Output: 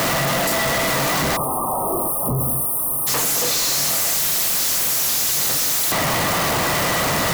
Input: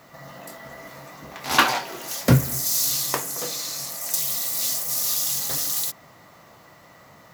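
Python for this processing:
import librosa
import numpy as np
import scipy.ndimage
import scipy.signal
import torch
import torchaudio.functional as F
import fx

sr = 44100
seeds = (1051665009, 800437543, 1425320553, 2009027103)

y = np.sign(x) * np.sqrt(np.mean(np.square(x)))
y = fx.spec_erase(y, sr, start_s=1.36, length_s=1.71, low_hz=1300.0, high_hz=8500.0)
y = y * 10.0 ** (6.5 / 20.0)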